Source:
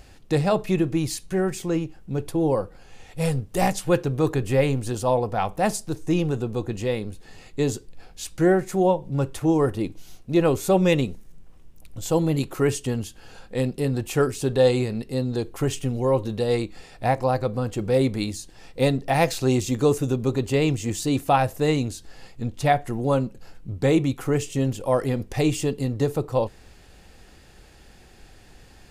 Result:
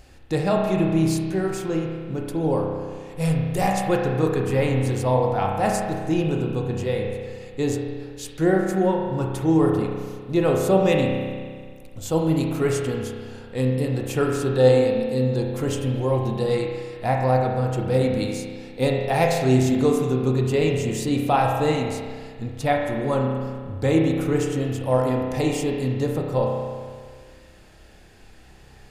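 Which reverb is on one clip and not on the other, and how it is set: spring tank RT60 1.8 s, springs 31 ms, chirp 50 ms, DRR 0 dB; trim -2 dB

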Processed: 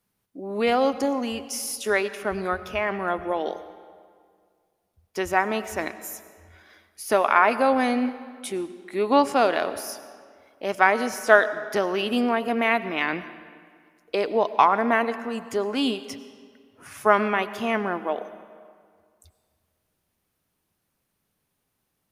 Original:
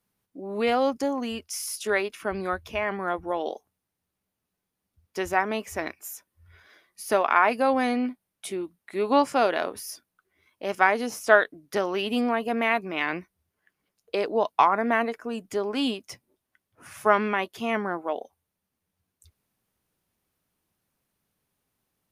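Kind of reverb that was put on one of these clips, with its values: algorithmic reverb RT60 2 s, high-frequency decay 0.75×, pre-delay 60 ms, DRR 13.5 dB; trim +2 dB

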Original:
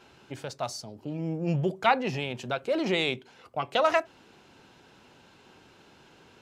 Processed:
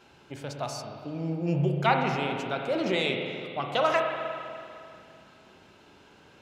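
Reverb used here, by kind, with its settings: spring tank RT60 2.5 s, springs 35/49 ms, chirp 40 ms, DRR 2 dB; trim -1.5 dB

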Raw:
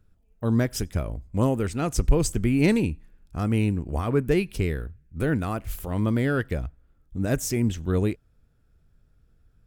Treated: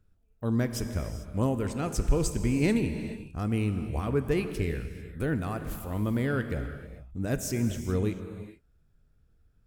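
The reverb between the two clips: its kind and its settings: gated-style reverb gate 470 ms flat, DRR 8 dB; trim -5 dB

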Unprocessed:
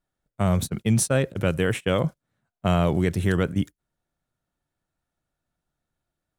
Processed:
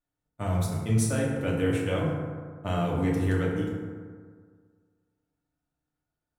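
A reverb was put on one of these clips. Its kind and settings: FDN reverb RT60 1.8 s, low-frequency decay 1×, high-frequency decay 0.4×, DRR -4.5 dB; trim -10.5 dB

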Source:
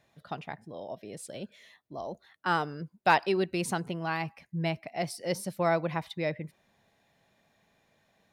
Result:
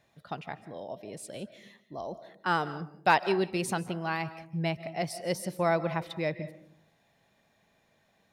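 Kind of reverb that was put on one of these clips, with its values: algorithmic reverb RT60 0.62 s, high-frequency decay 0.35×, pre-delay 115 ms, DRR 14.5 dB

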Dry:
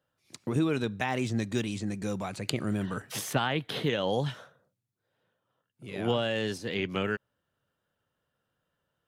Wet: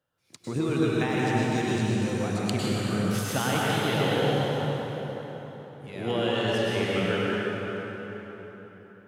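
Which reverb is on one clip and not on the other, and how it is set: plate-style reverb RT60 4.4 s, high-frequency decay 0.65×, pre-delay 90 ms, DRR -6 dB; trim -2 dB

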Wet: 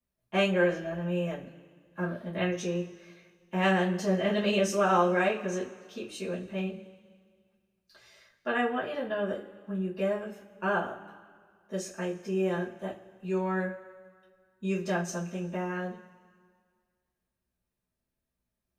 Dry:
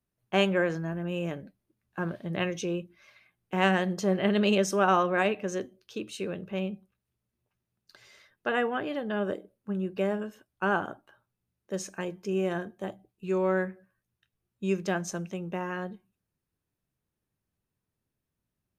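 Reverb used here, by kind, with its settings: two-slope reverb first 0.22 s, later 1.9 s, from -22 dB, DRR -9 dB; trim -10 dB

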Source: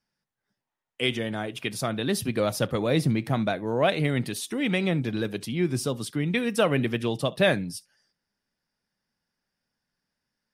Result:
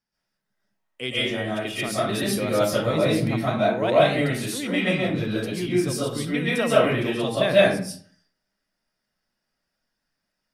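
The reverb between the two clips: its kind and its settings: algorithmic reverb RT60 0.51 s, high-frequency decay 0.65×, pre-delay 95 ms, DRR -8.5 dB; trim -5 dB

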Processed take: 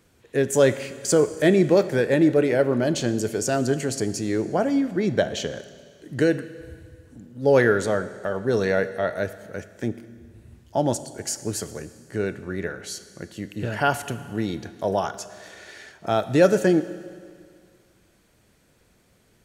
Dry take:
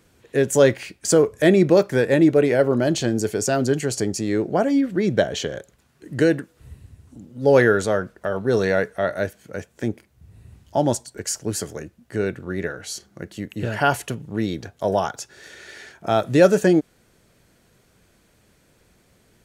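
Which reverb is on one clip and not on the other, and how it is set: Schroeder reverb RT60 2 s, combs from 26 ms, DRR 13 dB; trim -2.5 dB

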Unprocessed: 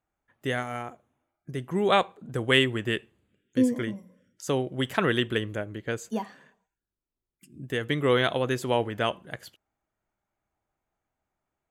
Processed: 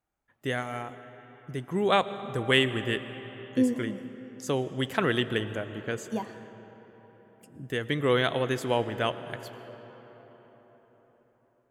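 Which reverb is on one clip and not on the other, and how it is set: algorithmic reverb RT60 4.9 s, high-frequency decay 0.55×, pre-delay 75 ms, DRR 12.5 dB; trim -1.5 dB

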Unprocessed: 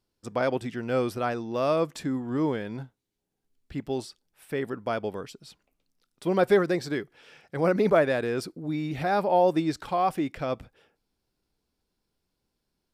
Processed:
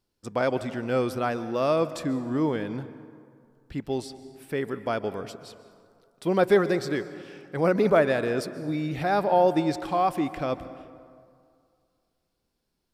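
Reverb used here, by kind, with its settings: plate-style reverb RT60 2.2 s, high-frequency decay 0.5×, pre-delay 115 ms, DRR 13.5 dB; trim +1 dB

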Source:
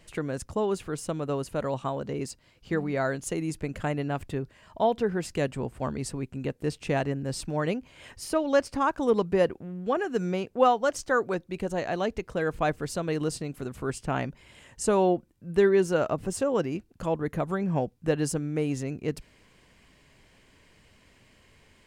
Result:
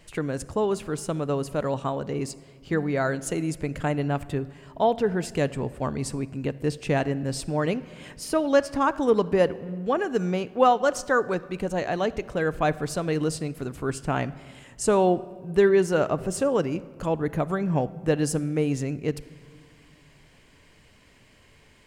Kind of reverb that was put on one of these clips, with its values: simulated room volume 2500 m³, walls mixed, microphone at 0.35 m; trim +2.5 dB

